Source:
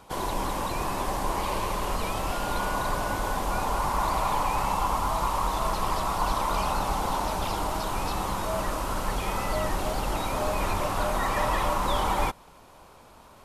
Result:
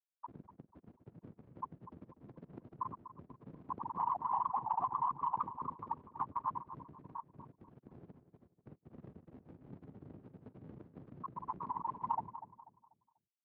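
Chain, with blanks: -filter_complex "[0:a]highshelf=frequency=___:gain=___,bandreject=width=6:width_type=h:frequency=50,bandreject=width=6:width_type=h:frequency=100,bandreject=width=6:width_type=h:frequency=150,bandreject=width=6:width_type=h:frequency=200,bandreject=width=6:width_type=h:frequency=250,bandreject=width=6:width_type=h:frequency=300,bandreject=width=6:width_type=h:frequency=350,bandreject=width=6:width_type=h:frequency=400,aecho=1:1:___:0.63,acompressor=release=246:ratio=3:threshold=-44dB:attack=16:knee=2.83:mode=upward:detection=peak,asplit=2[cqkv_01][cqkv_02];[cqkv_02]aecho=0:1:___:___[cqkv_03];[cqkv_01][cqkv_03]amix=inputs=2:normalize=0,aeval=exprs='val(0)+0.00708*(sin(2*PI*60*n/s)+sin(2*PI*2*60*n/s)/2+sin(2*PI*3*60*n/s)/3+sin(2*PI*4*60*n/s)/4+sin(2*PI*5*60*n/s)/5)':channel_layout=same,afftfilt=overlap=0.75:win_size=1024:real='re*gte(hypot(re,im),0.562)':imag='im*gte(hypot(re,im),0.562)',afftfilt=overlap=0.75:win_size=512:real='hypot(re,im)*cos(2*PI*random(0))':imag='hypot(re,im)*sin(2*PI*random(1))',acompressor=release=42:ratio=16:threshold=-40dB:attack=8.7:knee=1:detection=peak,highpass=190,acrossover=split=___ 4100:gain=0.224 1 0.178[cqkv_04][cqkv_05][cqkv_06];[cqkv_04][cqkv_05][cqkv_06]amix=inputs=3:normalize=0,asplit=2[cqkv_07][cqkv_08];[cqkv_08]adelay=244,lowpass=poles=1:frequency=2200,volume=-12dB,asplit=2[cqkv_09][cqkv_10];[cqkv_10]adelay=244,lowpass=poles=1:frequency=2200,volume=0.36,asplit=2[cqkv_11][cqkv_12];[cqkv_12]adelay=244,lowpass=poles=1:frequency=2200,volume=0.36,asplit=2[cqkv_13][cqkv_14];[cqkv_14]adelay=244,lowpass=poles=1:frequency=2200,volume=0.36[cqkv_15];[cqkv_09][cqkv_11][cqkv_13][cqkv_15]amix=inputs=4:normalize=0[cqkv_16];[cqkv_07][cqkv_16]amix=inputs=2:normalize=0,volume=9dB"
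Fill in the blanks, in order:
5500, -4, 1, 188, 0.112, 240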